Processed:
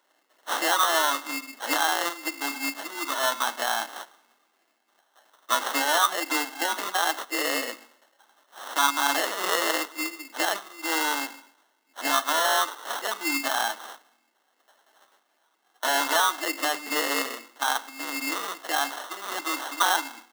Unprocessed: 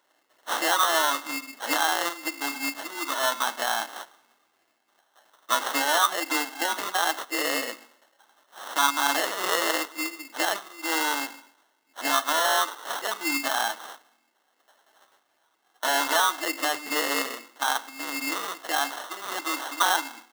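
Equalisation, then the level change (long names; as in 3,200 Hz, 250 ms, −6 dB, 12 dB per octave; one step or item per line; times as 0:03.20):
Butterworth high-pass 160 Hz
0.0 dB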